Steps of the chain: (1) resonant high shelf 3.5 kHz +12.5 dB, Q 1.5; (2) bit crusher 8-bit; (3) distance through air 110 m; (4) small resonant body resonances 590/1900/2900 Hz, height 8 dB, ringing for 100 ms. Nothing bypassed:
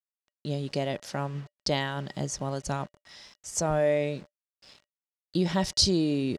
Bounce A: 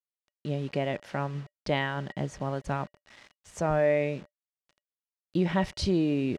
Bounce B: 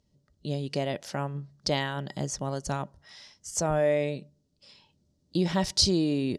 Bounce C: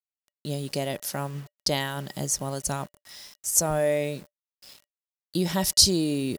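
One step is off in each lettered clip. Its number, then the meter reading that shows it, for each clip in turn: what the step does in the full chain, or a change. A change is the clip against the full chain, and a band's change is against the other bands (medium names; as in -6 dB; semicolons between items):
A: 1, 8 kHz band -15.0 dB; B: 2, distortion -25 dB; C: 3, 8 kHz band +9.0 dB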